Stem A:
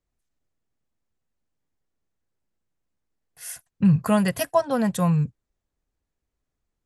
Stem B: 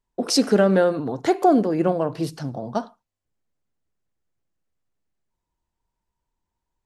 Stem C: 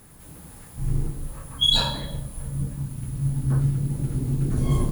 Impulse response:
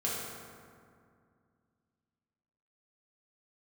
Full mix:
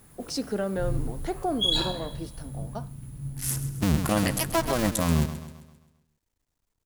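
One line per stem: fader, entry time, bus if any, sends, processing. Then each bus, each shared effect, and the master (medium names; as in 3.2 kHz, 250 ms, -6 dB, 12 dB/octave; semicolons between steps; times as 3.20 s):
+1.5 dB, 0.00 s, no send, echo send -13 dB, cycle switcher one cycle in 2, muted; treble shelf 3.1 kHz +8.5 dB
-12.0 dB, 0.00 s, no send, no echo send, none
-4.0 dB, 0.00 s, no send, echo send -19.5 dB, auto duck -7 dB, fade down 2.00 s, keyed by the first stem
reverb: none
echo: feedback delay 132 ms, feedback 47%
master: peak limiter -13 dBFS, peak gain reduction 8 dB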